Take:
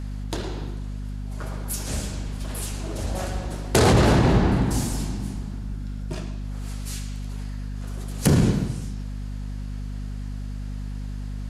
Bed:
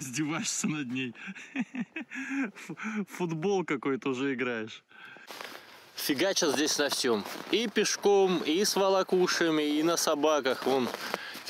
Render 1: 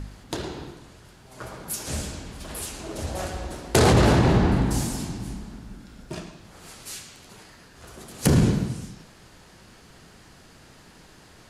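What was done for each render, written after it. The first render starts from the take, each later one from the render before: de-hum 50 Hz, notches 5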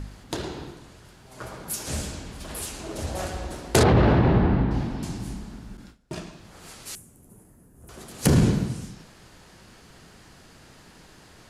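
3.83–5.03 air absorption 330 m; 5.77–6.27 gate with hold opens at -34 dBFS, closes at -40 dBFS; 6.95–7.89 EQ curve 250 Hz 0 dB, 1000 Hz -14 dB, 4400 Hz -30 dB, 10000 Hz +1 dB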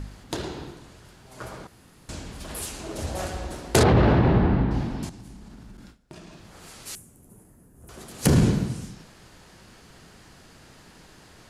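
1.67–2.09 room tone; 5.09–6.75 compressor, threshold -40 dBFS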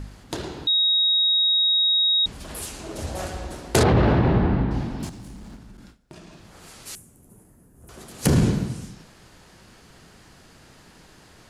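0.67–2.26 bleep 3780 Hz -16.5 dBFS; 5–5.57 G.711 law mismatch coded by mu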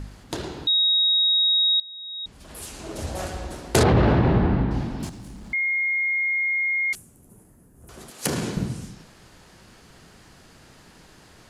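1.8–2.88 fade in quadratic, from -20.5 dB; 5.53–6.93 bleep 2140 Hz -20.5 dBFS; 8.1–8.57 HPF 560 Hz 6 dB/oct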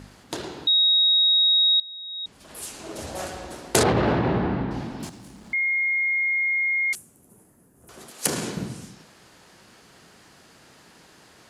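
dynamic EQ 8800 Hz, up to +5 dB, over -40 dBFS, Q 0.82; HPF 230 Hz 6 dB/oct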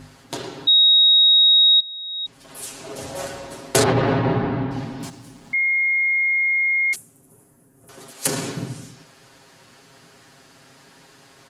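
comb 7.4 ms, depth 82%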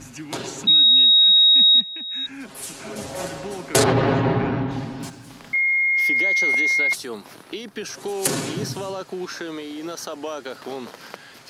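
add bed -5 dB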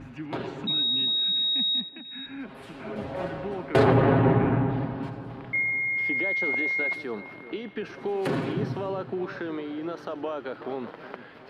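air absorption 470 m; split-band echo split 1600 Hz, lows 0.372 s, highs 85 ms, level -14 dB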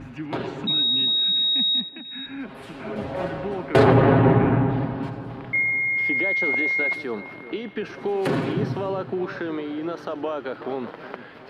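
gain +4 dB

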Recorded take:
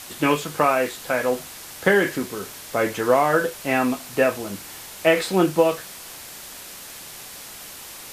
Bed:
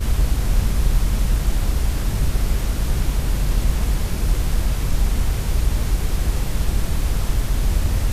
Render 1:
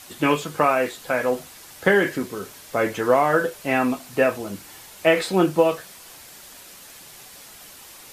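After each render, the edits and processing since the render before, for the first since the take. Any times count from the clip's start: denoiser 6 dB, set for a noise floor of -39 dBFS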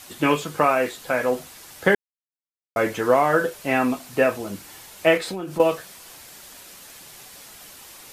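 1.95–2.76 mute; 5.17–5.6 compressor 16:1, threshold -26 dBFS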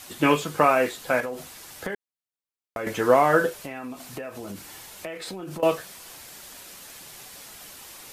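1.2–2.87 compressor 10:1, threshold -27 dBFS; 3.54–5.63 compressor 16:1, threshold -31 dBFS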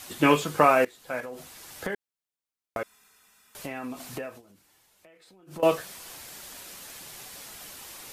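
0.85–1.93 fade in, from -20 dB; 2.83–3.55 room tone; 4.23–5.65 dip -20.5 dB, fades 0.19 s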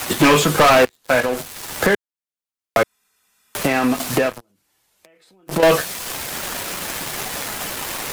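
sample leveller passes 5; three-band squash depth 40%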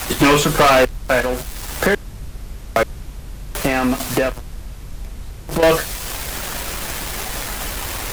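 add bed -12.5 dB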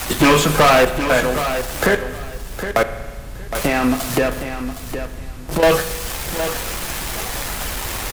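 on a send: feedback echo 0.764 s, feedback 18%, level -10 dB; on the sum: spring tank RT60 1.5 s, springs 39 ms, chirp 60 ms, DRR 11 dB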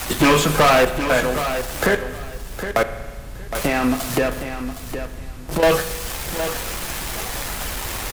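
gain -2 dB

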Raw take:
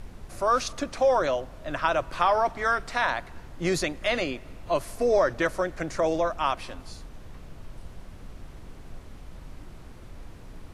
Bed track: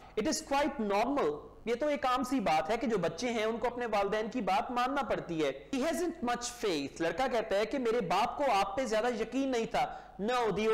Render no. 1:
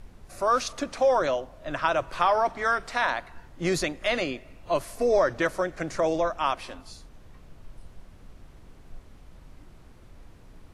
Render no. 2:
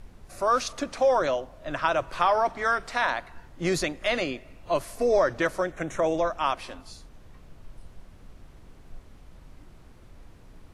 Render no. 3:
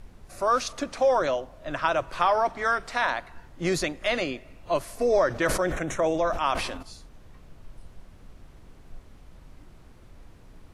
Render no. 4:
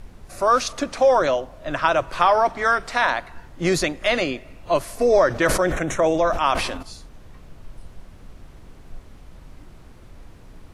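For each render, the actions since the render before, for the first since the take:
noise print and reduce 6 dB
5.72–6.18 Butterworth band-stop 4700 Hz, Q 2.4
5.28–6.83 sustainer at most 45 dB/s
gain +5.5 dB

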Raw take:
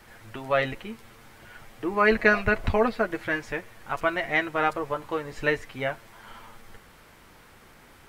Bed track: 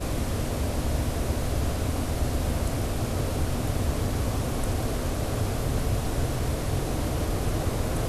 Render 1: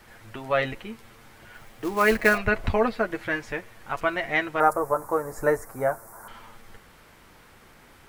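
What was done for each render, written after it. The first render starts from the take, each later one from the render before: 1.54–2.38 short-mantissa float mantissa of 2-bit; 4.6–6.28 EQ curve 270 Hz 0 dB, 640 Hz +7 dB, 1400 Hz +4 dB, 2100 Hz -10 dB, 3100 Hz -27 dB, 5500 Hz 0 dB, 9700 Hz +14 dB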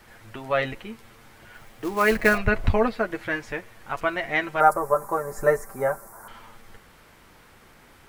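2.16–2.88 low shelf 160 Hz +7 dB; 4.43–6.08 comb 5.1 ms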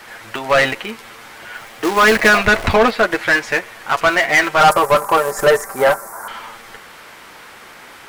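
in parallel at -8.5 dB: sample gate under -29.5 dBFS; on the sum: overdrive pedal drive 22 dB, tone 7400 Hz, clips at -3.5 dBFS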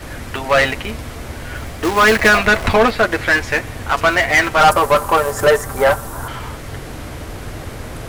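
add bed track -3 dB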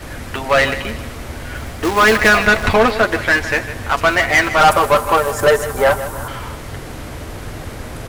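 feedback echo 0.156 s, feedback 43%, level -13.5 dB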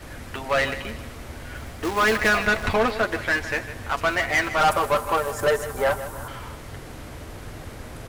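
gain -8.5 dB

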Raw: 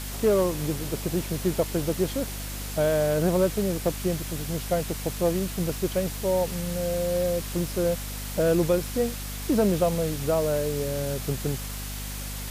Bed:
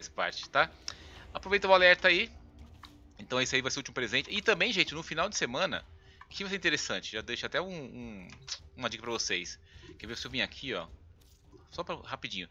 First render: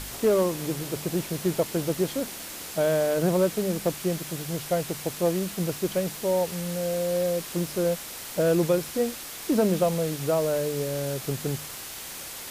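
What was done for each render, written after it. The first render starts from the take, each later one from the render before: de-hum 50 Hz, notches 5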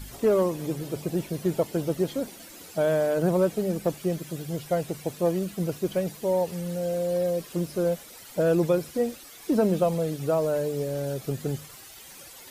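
denoiser 12 dB, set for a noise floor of -39 dBFS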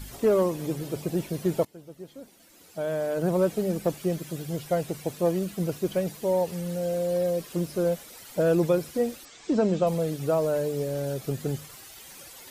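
1.65–3.5 fade in quadratic, from -19 dB; 9.25–9.87 elliptic low-pass 7800 Hz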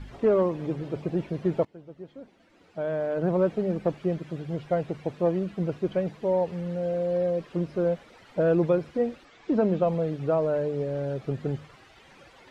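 LPF 2400 Hz 12 dB/oct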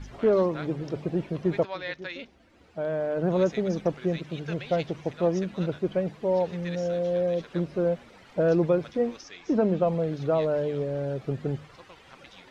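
add bed -14 dB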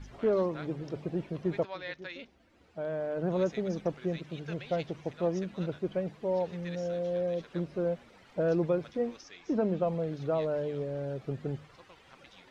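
gain -5.5 dB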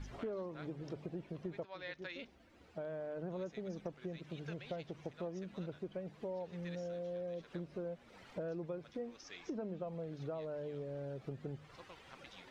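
compressor 4:1, threshold -42 dBFS, peak gain reduction 15.5 dB

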